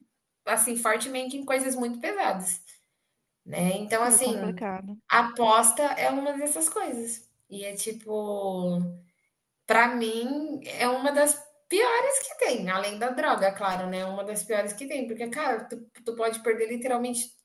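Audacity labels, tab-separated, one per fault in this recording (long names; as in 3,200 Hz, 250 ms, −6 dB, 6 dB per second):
12.220000	12.230000	drop-out 7.8 ms
13.700000	14.190000	clipping −26 dBFS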